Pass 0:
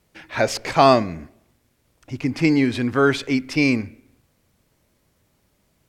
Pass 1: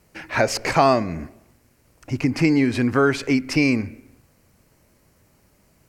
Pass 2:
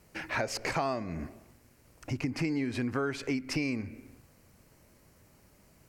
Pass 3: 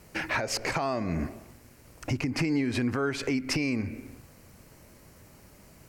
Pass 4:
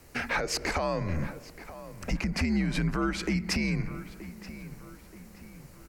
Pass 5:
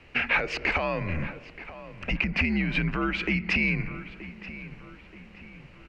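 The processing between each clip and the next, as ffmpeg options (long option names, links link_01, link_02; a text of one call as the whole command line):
ffmpeg -i in.wav -af "acompressor=threshold=-25dB:ratio=2,equalizer=frequency=3500:width_type=o:width=0.31:gain=-10,volume=6dB" out.wav
ffmpeg -i in.wav -af "acompressor=threshold=-30dB:ratio=3,volume=-2dB" out.wav
ffmpeg -i in.wav -af "alimiter=level_in=2dB:limit=-24dB:level=0:latency=1:release=151,volume=-2dB,volume=7.5dB" out.wav
ffmpeg -i in.wav -filter_complex "[0:a]asplit=2[link_01][link_02];[link_02]adelay=927,lowpass=frequency=2800:poles=1,volume=-14.5dB,asplit=2[link_03][link_04];[link_04]adelay=927,lowpass=frequency=2800:poles=1,volume=0.47,asplit=2[link_05][link_06];[link_06]adelay=927,lowpass=frequency=2800:poles=1,volume=0.47,asplit=2[link_07][link_08];[link_08]adelay=927,lowpass=frequency=2800:poles=1,volume=0.47[link_09];[link_01][link_03][link_05][link_07][link_09]amix=inputs=5:normalize=0,afreqshift=-81" out.wav
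ffmpeg -i in.wav -af "lowpass=frequency=2700:width_type=q:width=4.5" out.wav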